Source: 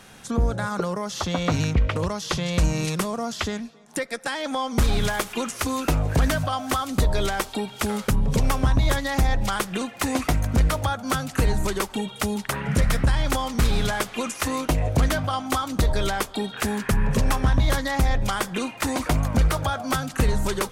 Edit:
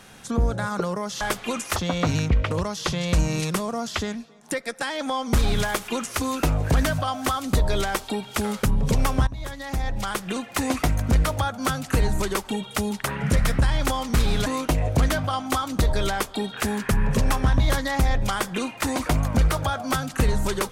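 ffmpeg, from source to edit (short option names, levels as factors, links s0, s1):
-filter_complex "[0:a]asplit=5[s0][s1][s2][s3][s4];[s0]atrim=end=1.212[s5];[s1]atrim=start=13.908:end=14.462[s6];[s2]atrim=start=1.208:end=8.72,asetpts=PTS-STARTPTS,afade=t=out:st=7.508:d=0.004:c=hsin:silence=0.125893[s7];[s3]atrim=start=8.72:end=13.912,asetpts=PTS-STARTPTS,afade=t=in:d=1.21:silence=0.125893[s8];[s4]atrim=start=14.458[s9];[s5][s6]acrossfade=d=0.004:c1=hsin:c2=hsin[s10];[s7][s8]concat=n=2:v=0:a=1[s11];[s10][s11]acrossfade=d=0.004:c1=hsin:c2=hsin[s12];[s12][s9]acrossfade=d=0.004:c1=hsin:c2=hsin"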